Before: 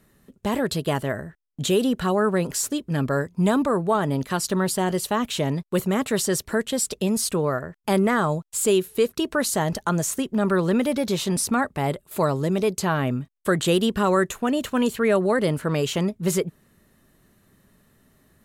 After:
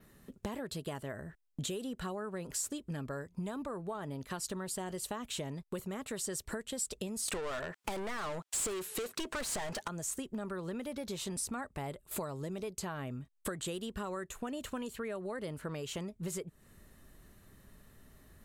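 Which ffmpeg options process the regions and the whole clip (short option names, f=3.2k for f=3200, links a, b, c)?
-filter_complex "[0:a]asettb=1/sr,asplit=3[a][b][c];[a]atrim=end=7.284[d];[b]atrim=start=7.28:end=9.88,asetpts=PTS-STARTPTS,afade=t=in:d=0.004:c=qsin,afade=t=out:st=2.596:d=0.004:c=qsin,highpass=98,asplit=2[e][f];[f]highpass=f=720:p=1,volume=30dB,asoftclip=type=tanh:threshold=-9.5dB[g];[e][g]amix=inputs=2:normalize=0,lowpass=f=4.7k:p=1,volume=-6dB[h];[c]atrim=start=9.876[i];[d][h]acrossfade=d=0.004:c1=hsin:c2=qsin[j];[j][i]acrossfade=d=0.004:c1=qsin:c2=hsin,asubboost=boost=2.5:cutoff=88,acompressor=threshold=-35dB:ratio=16,adynamicequalizer=threshold=0.00158:dfrequency=8000:dqfactor=2.4:tfrequency=8000:tqfactor=2.4:attack=5:release=100:ratio=0.375:range=3:mode=boostabove:tftype=bell,volume=-1dB"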